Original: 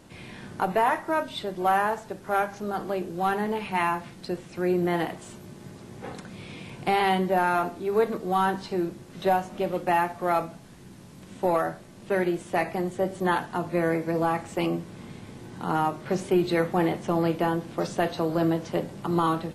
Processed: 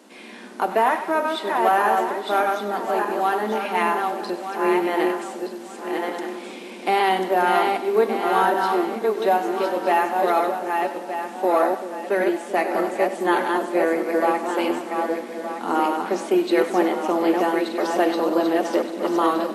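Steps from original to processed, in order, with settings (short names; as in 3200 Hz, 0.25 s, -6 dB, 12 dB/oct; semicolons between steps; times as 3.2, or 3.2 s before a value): regenerating reverse delay 0.61 s, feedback 50%, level -3.5 dB; elliptic high-pass 220 Hz, stop band 40 dB; split-band echo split 600 Hz, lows 0.386 s, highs 97 ms, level -12.5 dB; gain +4 dB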